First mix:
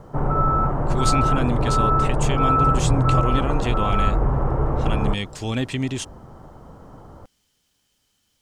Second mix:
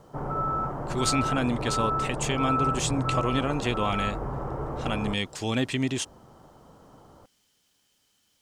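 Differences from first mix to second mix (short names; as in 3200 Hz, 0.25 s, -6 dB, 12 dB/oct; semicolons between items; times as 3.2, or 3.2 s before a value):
background -7.0 dB; master: add low shelf 100 Hz -11 dB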